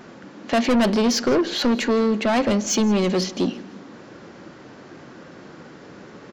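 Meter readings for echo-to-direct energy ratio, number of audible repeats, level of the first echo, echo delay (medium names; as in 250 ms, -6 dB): -20.5 dB, 2, -21.0 dB, 165 ms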